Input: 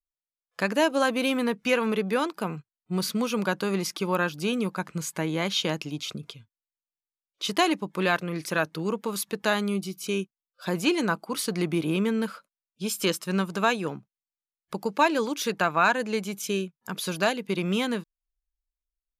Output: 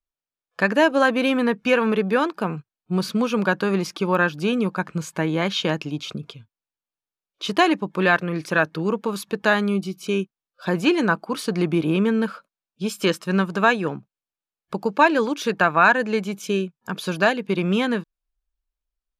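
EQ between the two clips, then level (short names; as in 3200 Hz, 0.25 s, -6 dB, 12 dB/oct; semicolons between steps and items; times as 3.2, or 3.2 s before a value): LPF 2600 Hz 6 dB/oct; notch 2000 Hz, Q 10; dynamic EQ 1800 Hz, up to +6 dB, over -45 dBFS, Q 2.9; +5.5 dB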